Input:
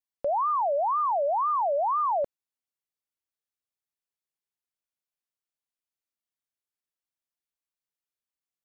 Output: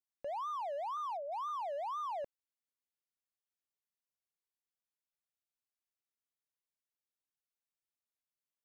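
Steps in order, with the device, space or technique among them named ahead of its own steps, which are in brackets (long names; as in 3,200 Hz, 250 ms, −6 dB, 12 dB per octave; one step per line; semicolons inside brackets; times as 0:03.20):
0:00.97–0:01.49: high-pass filter 980 Hz 12 dB per octave
limiter into clipper (brickwall limiter −28 dBFS, peak gain reduction 6 dB; hard clipping −29.5 dBFS, distortion −23 dB)
level −7 dB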